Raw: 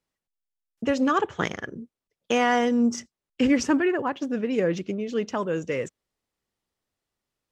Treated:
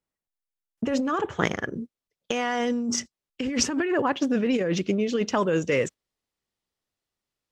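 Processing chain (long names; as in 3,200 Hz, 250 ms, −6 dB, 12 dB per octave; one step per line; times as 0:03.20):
noise gate −40 dBFS, range −9 dB
parametric band 4,200 Hz −3.5 dB 2 octaves, from 0:01.74 +3.5 dB
compressor whose output falls as the input rises −26 dBFS, ratio −1
level +2 dB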